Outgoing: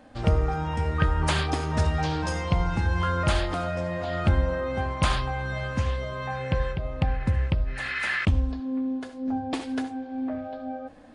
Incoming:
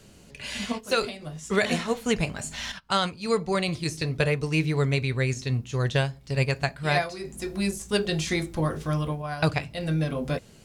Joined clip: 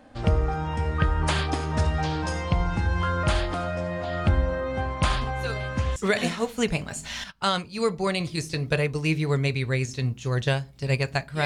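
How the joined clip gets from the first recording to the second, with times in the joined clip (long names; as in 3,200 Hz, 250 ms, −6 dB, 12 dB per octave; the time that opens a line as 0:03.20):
outgoing
0:05.21: mix in incoming from 0:00.69 0.75 s −10.5 dB
0:05.96: continue with incoming from 0:01.44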